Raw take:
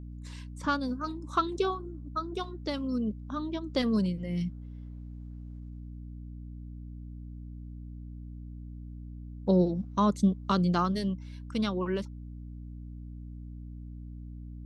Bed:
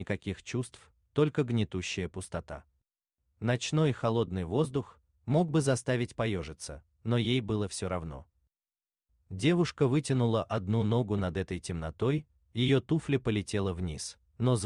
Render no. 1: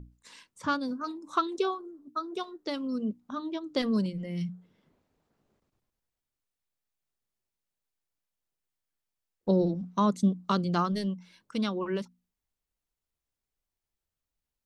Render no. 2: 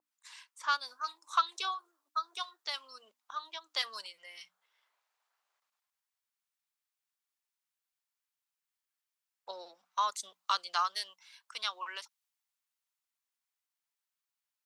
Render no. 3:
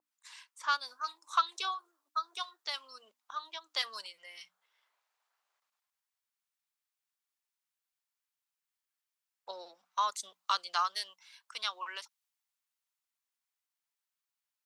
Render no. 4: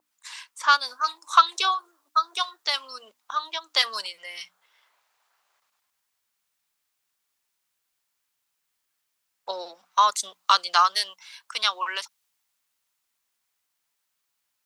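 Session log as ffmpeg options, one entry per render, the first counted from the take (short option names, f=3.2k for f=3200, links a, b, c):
-af "bandreject=f=60:t=h:w=6,bandreject=f=120:t=h:w=6,bandreject=f=180:t=h:w=6,bandreject=f=240:t=h:w=6,bandreject=f=300:t=h:w=6"
-af "highpass=f=900:w=0.5412,highpass=f=900:w=1.3066,adynamicequalizer=threshold=0.00447:dfrequency=2500:dqfactor=0.7:tfrequency=2500:tqfactor=0.7:attack=5:release=100:ratio=0.375:range=3:mode=boostabove:tftype=highshelf"
-af anull
-af "volume=12dB"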